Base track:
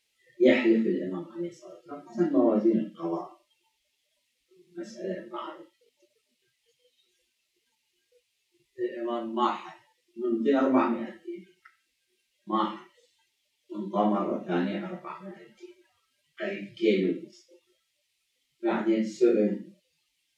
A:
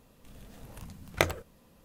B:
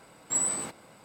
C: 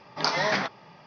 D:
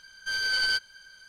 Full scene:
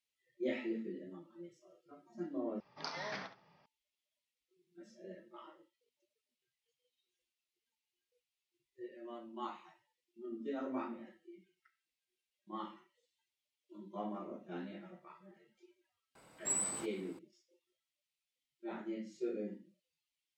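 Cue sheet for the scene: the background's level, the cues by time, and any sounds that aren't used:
base track −17 dB
0:02.60: overwrite with C −17.5 dB + repeating echo 68 ms, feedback 16%, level −11.5 dB
0:16.15: mix in B −8 dB
not used: A, D

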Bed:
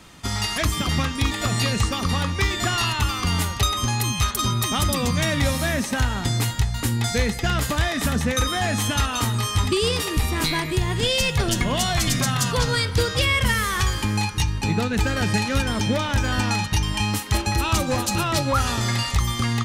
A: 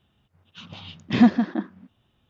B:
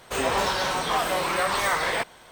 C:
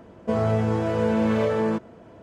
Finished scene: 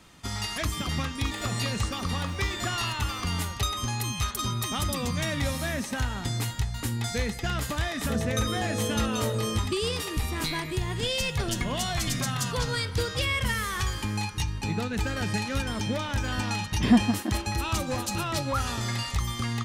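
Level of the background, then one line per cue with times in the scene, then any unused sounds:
bed −7 dB
0:01.23: mix in B −16.5 dB + brickwall limiter −22.5 dBFS
0:07.81: mix in C −8 dB + elliptic low-pass filter 630 Hz
0:15.70: mix in A −4 dB

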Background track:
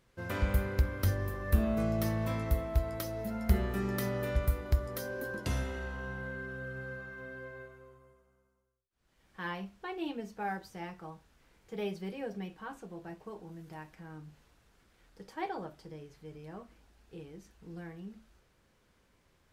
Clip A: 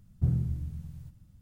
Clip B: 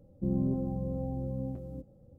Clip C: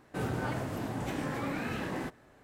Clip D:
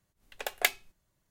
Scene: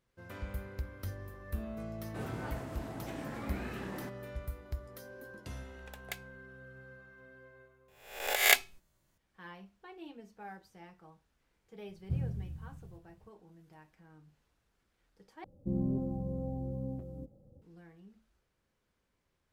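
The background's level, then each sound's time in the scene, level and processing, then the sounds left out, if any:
background track −11 dB
0:02.00: mix in C −7.5 dB
0:05.47: mix in D −16.5 dB
0:07.88: mix in D −0.5 dB + peak hold with a rise ahead of every peak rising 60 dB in 0.62 s
0:11.88: mix in A −7.5 dB
0:15.44: overwrite with B −3 dB

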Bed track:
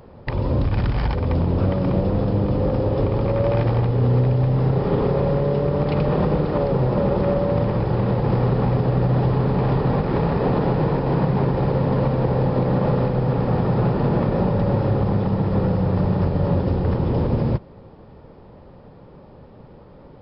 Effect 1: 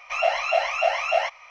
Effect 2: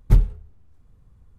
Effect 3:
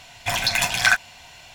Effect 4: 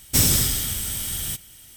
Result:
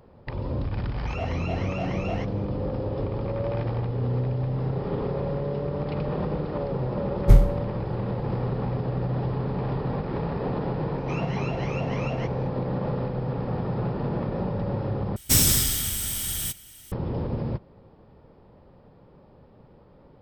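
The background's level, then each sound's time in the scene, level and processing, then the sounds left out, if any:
bed track −8.5 dB
0:00.96: mix in 1 −13 dB
0:07.18: mix in 2 −0.5 dB + peak hold with a decay on every bin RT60 0.44 s
0:10.98: mix in 1 −11 dB + brickwall limiter −17.5 dBFS
0:15.16: overwrite with 4 −1 dB
not used: 3

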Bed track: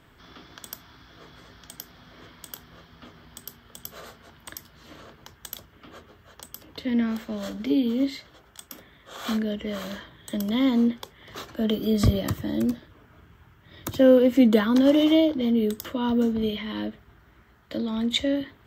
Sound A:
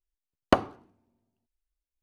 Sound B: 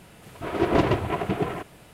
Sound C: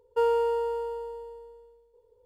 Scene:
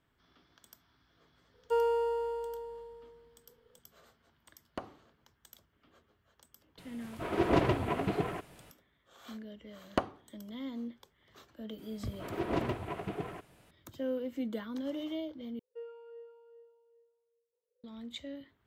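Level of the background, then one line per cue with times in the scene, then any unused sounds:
bed track −19 dB
0:01.54: mix in C −4.5 dB
0:04.25: mix in A −15 dB + brickwall limiter −10.5 dBFS
0:06.78: mix in B −6 dB
0:09.45: mix in A −9.5 dB
0:11.78: mix in B −12 dB
0:15.59: overwrite with C −12 dB + formant filter swept between two vowels a-e 2.5 Hz

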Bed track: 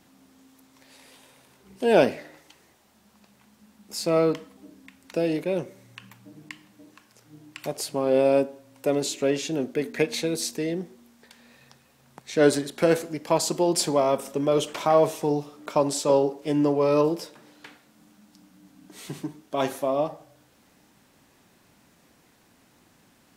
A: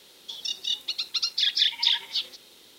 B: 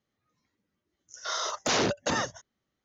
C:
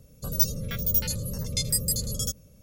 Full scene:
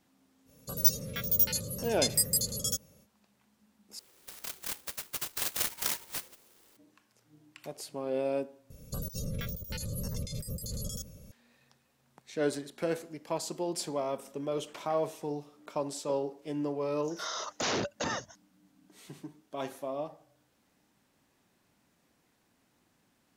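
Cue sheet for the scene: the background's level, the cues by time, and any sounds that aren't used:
bed track −11.5 dB
0:00.45: mix in C −1 dB, fades 0.05 s + high-pass filter 250 Hz 6 dB per octave
0:03.99: overwrite with A −9 dB + converter with an unsteady clock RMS 0.12 ms
0:08.70: overwrite with C −3 dB + compressor whose output falls as the input rises −35 dBFS
0:15.94: mix in B −5.5 dB

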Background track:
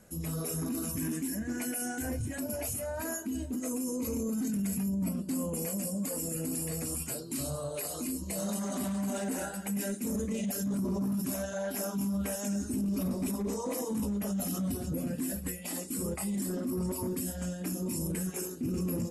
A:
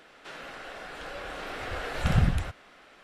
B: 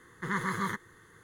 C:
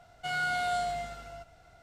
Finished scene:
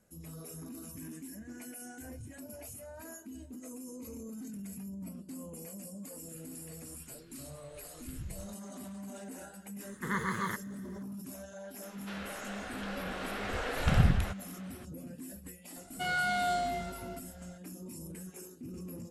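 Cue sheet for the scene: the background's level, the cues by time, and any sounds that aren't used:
background track −11.5 dB
0:06.03: mix in A −7 dB + guitar amp tone stack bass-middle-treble 6-0-2
0:09.80: mix in B −2 dB
0:11.82: mix in A −1.5 dB
0:15.76: mix in C −0.5 dB

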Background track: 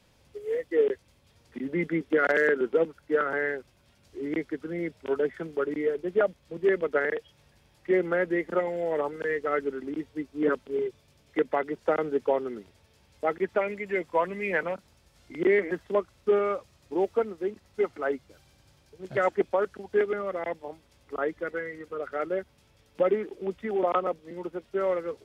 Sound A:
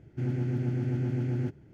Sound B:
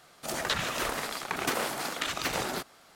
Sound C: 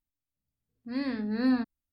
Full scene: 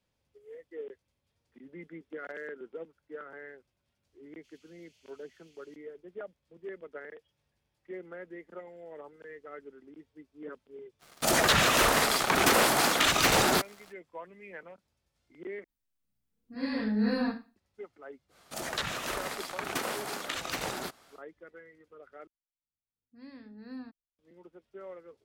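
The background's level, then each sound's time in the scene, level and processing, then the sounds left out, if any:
background track −18 dB
0:04.26: mix in A −3.5 dB + Butterworth high-pass 2,900 Hz
0:10.99: mix in B −1 dB, fades 0.05 s + leveller curve on the samples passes 3
0:15.64: overwrite with C −6.5 dB + four-comb reverb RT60 0.32 s, combs from 33 ms, DRR −7.5 dB
0:18.28: mix in B −3.5 dB, fades 0.10 s
0:22.27: overwrite with C −17.5 dB

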